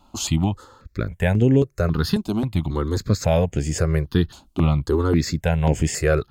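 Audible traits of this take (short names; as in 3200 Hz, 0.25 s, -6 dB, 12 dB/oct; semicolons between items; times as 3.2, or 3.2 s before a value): notches that jump at a steady rate 3.7 Hz 480–4100 Hz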